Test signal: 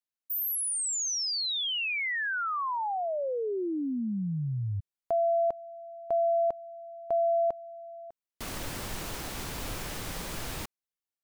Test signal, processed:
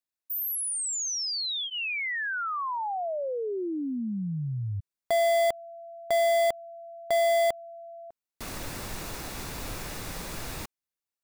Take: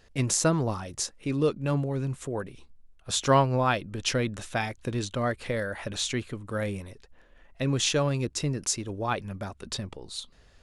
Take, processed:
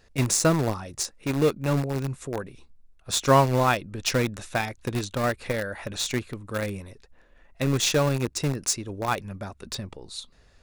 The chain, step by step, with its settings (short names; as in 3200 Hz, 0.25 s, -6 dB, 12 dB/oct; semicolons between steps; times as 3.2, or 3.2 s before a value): in parallel at -8 dB: bit-crush 4-bit; on the sum: notch 3100 Hz, Q 12